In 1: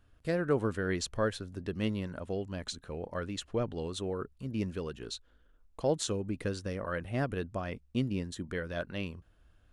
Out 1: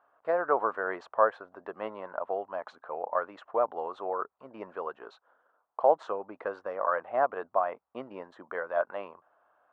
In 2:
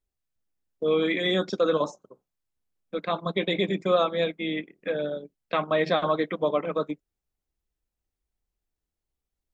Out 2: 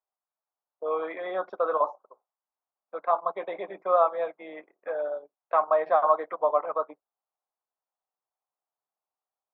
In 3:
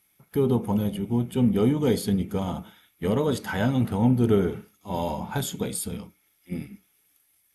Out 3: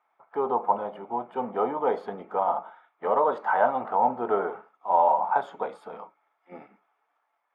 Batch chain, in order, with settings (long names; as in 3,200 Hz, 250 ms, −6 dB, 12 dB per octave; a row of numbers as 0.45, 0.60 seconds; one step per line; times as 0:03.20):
flat-topped band-pass 890 Hz, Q 1.5
normalise the peak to −9 dBFS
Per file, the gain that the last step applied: +14.5, +6.5, +12.5 decibels